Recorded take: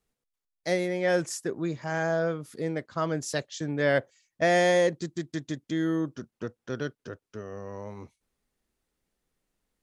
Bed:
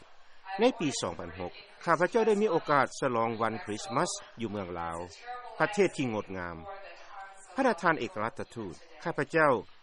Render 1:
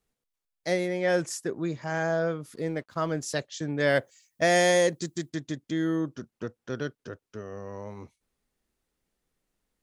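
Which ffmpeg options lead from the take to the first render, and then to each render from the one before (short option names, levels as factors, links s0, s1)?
-filter_complex "[0:a]asettb=1/sr,asplit=3[s0][s1][s2];[s0]atrim=end=2.554[s3];[s1]atrim=start=2.55:end=3.23,asetpts=PTS-STARTPTS,afade=t=in:d=0.004:c=qsin,afade=t=out:st=0.676:d=0.004:c=qsin,aeval=exprs='sgn(val(0))*max(abs(val(0))-0.00112,0)':c=same[s4];[s2]atrim=start=3.226[s5];[s3][s4]acrossfade=d=0.004:c1=hsin:c2=qsin[s6];[s6][s5]acrossfade=d=0.004:c1=qsin:c2=hsin,asettb=1/sr,asplit=3[s7][s8][s9];[s7]atrim=end=3.804[s10];[s8]atrim=start=3.8:end=5.3,asetpts=PTS-STARTPTS,afade=t=in:d=0.004:c=qsin,afade=t=out:st=1.496:d=0.004:c=qsin,aemphasis=mode=production:type=50kf[s11];[s9]atrim=start=5.296[s12];[s10][s11]acrossfade=d=0.004:c1=hsin:c2=qsin[s13];[s13][s12]acrossfade=d=0.004:c1=qsin:c2=hsin"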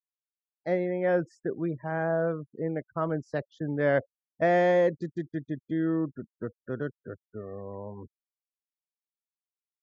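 -af "afftfilt=real='re*gte(hypot(re,im),0.0112)':imag='im*gte(hypot(re,im),0.0112)':win_size=1024:overlap=0.75,lowpass=1500"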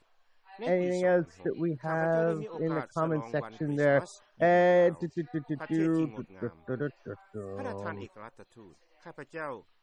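-filter_complex "[1:a]volume=0.211[s0];[0:a][s0]amix=inputs=2:normalize=0"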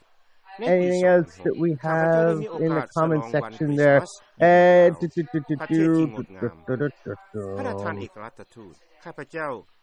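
-af "volume=2.51"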